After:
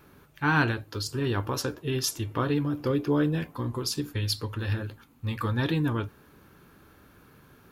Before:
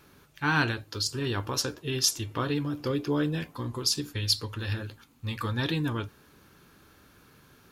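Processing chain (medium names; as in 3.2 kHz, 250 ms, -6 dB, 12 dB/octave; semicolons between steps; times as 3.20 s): peaking EQ 5.6 kHz -8.5 dB 2.2 oct; trim +3 dB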